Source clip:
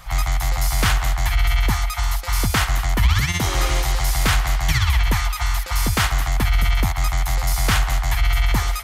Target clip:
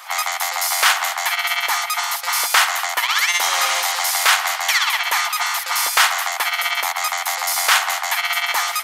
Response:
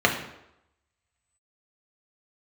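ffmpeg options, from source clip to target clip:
-af "highpass=f=700:w=0.5412,highpass=f=700:w=1.3066,volume=7dB"

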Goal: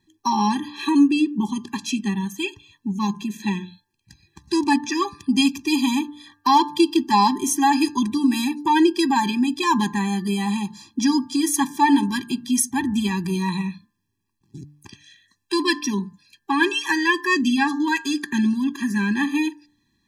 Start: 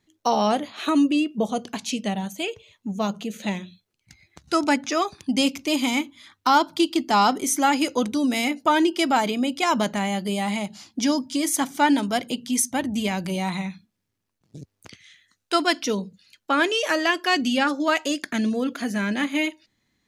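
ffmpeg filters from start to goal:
-af "bandreject=f=147.1:t=h:w=4,bandreject=f=294.2:t=h:w=4,bandreject=f=441.3:t=h:w=4,bandreject=f=588.4:t=h:w=4,bandreject=f=735.5:t=h:w=4,bandreject=f=882.6:t=h:w=4,bandreject=f=1.0297k:t=h:w=4,bandreject=f=1.1768k:t=h:w=4,bandreject=f=1.3239k:t=h:w=4,bandreject=f=1.471k:t=h:w=4,bandreject=f=1.6181k:t=h:w=4,bandreject=f=1.7652k:t=h:w=4,afftfilt=real='re*eq(mod(floor(b*sr/1024/390),2),0)':imag='im*eq(mod(floor(b*sr/1024/390),2),0)':win_size=1024:overlap=0.75,volume=4dB"

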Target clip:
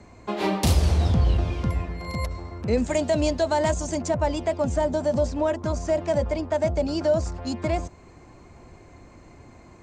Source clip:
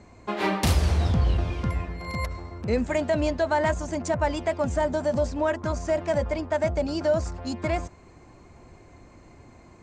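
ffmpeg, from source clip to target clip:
-filter_complex "[0:a]asettb=1/sr,asplit=3[a][b][c];[a]atrim=end=2.774[d];[b]atrim=start=2.77:end=4.01,asetpts=PTS-STARTPTS,afade=t=in:d=0.004:c=qsin,afade=t=out:st=1.236:d=0.004:c=qsin,highshelf=f=4k:g=9[e];[c]atrim=start=4.006[f];[d][e]acrossfade=d=0.004:c1=hsin:c2=qsin[g];[g][f]acrossfade=d=0.004:c1=qsin:c2=hsin,acrossover=split=320|1100|2400[h][i][j][k];[j]acompressor=threshold=-50dB:ratio=6[l];[h][i][l][k]amix=inputs=4:normalize=0,volume=2dB"

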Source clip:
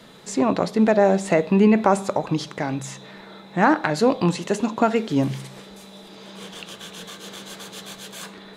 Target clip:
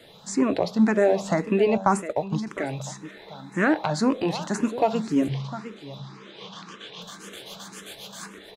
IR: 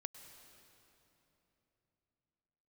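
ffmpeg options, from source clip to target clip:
-filter_complex "[0:a]asettb=1/sr,asplit=3[a][b][c];[a]atrim=end=1.774[d];[b]atrim=start=1.77:end=2.47,asetpts=PTS-STARTPTS,afade=t=in:d=0.004:c=qsin,afade=t=out:st=0.696:d=0.004:c=qsin,agate=range=-15dB:threshold=-22dB:ratio=16:detection=peak[e];[c]atrim=start=2.466[f];[d][e]acrossfade=d=0.004:c1=hsin:c2=qsin[g];[g][f]acrossfade=d=0.004:c1=qsin:c2=hsin,asettb=1/sr,asplit=3[h][i][j];[h]atrim=end=5.284[k];[i]atrim=start=5.28:end=7.02,asetpts=PTS-STARTPTS,afade=t=in:d=0.004:c=qsin,afade=t=out:st=1.736:d=0.004:c=qsin,highpass=130,equalizer=f=140:t=q:w=4:g=9,equalizer=f=630:t=q:w=4:g=-5,equalizer=f=1.1k:t=q:w=4:g=7,lowpass=f=5.8k:w=0.5412,lowpass=f=5.8k:w=1.3066[l];[j]atrim=start=7.016[m];[k][l]acrossfade=d=0.004:c1=hsin:c2=qsin[n];[n][m]acrossfade=d=0.004:c1=qsin:c2=hsin,aecho=1:1:706:0.188,asplit=2[o][p];[p]afreqshift=1.9[q];[o][q]amix=inputs=2:normalize=1"

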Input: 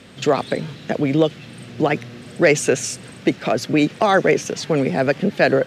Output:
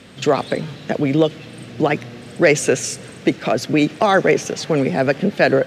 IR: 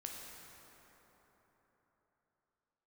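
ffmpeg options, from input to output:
-filter_complex "[0:a]asplit=2[a][b];[1:a]atrim=start_sample=2205,adelay=15[c];[b][c]afir=irnorm=-1:irlink=0,volume=-19dB[d];[a][d]amix=inputs=2:normalize=0,volume=1dB"

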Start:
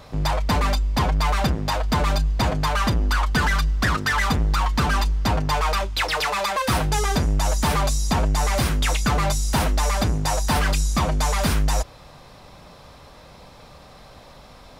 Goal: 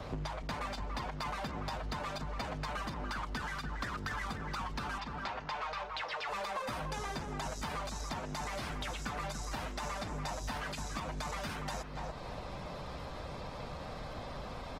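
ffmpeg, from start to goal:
-filter_complex "[0:a]acrossover=split=150|920|3900[a][b][c][d];[a]alimiter=limit=-24dB:level=0:latency=1:release=152[e];[e][b][c][d]amix=inputs=4:normalize=0,acrossover=split=960|6600[f][g][h];[f]acompressor=threshold=-32dB:ratio=4[i];[g]acompressor=threshold=-30dB:ratio=4[j];[h]acompressor=threshold=-37dB:ratio=4[k];[i][j][k]amix=inputs=3:normalize=0,asettb=1/sr,asplit=3[l][m][n];[l]atrim=end=4.984[o];[m]atrim=start=4.98:end=6.29,asetpts=PTS-STARTPTS,afade=t=in:d=0.004:c=qsin,afade=t=out:st=1.306:d=0.004:c=qsin,acrossover=split=480 5500:gain=0.251 1 0.1[p][q][r];[p][q][r]amix=inputs=3:normalize=0[s];[n]atrim=start=6.286[t];[o][s]acrossfade=d=0.004:c1=hsin:c2=qsin[u];[u][t]acrossfade=d=0.004:c1=qsin:c2=hsin,asplit=2[v][w];[w]adelay=287,lowpass=f=1.2k:p=1,volume=-6dB,asplit=2[x][y];[y]adelay=287,lowpass=f=1.2k:p=1,volume=0.3,asplit=2[z][aa];[aa]adelay=287,lowpass=f=1.2k:p=1,volume=0.3,asplit=2[ab][ac];[ac]adelay=287,lowpass=f=1.2k:p=1,volume=0.3[ad];[v][x][z][ab][ad]amix=inputs=5:normalize=0,acompressor=threshold=-40dB:ratio=4,aemphasis=mode=reproduction:type=50kf,volume=3dB" -ar 48000 -c:a libopus -b:a 16k

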